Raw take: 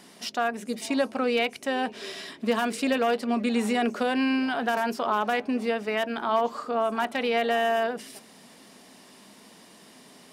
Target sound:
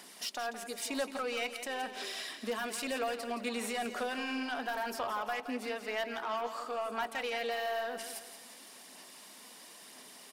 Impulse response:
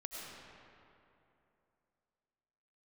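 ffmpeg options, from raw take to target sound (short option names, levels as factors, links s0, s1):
-filter_complex "[0:a]highpass=f=690:p=1,highshelf=f=9600:g=9,asplit=2[s0][s1];[s1]acompressor=threshold=0.0158:ratio=6,volume=1.12[s2];[s0][s2]amix=inputs=2:normalize=0,asoftclip=type=tanh:threshold=0.0891,aphaser=in_gain=1:out_gain=1:delay=4.1:decay=0.29:speed=1:type=sinusoidal,asplit=2[s3][s4];[s4]aecho=0:1:170|340|510|680:0.299|0.125|0.0527|0.0221[s5];[s3][s5]amix=inputs=2:normalize=0,volume=0.398"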